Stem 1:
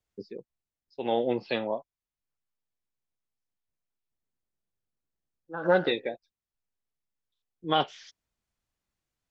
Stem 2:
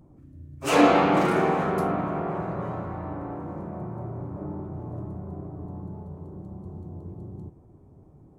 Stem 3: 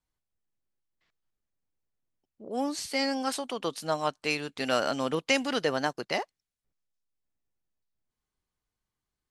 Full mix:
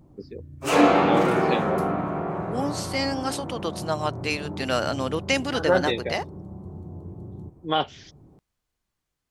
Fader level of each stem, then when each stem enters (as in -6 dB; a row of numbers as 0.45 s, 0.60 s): +1.5 dB, +0.5 dB, +2.0 dB; 0.00 s, 0.00 s, 0.00 s